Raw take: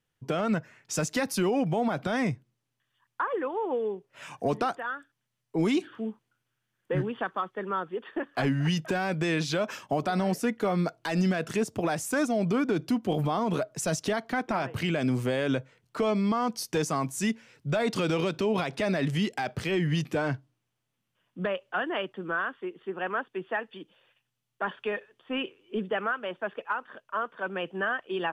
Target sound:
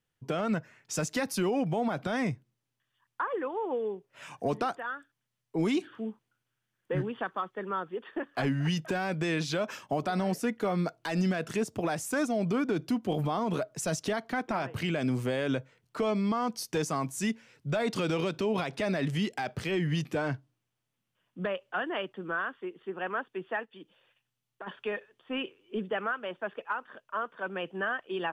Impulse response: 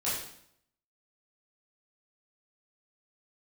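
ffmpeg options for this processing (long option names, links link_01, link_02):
-filter_complex "[0:a]asplit=3[link_01][link_02][link_03];[link_01]afade=type=out:start_time=23.64:duration=0.02[link_04];[link_02]acompressor=threshold=-40dB:ratio=6,afade=type=in:start_time=23.64:duration=0.02,afade=type=out:start_time=24.66:duration=0.02[link_05];[link_03]afade=type=in:start_time=24.66:duration=0.02[link_06];[link_04][link_05][link_06]amix=inputs=3:normalize=0,volume=-2.5dB"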